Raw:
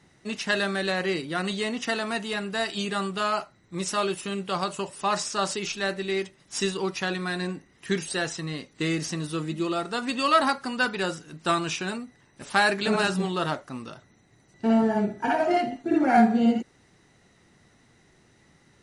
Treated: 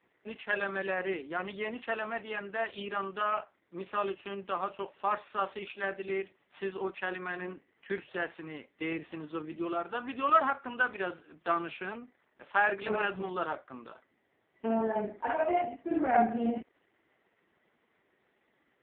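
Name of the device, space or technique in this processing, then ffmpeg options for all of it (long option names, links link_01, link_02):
telephone: -af "highpass=340,lowpass=3000,volume=-3.5dB" -ar 8000 -c:a libopencore_amrnb -b:a 4750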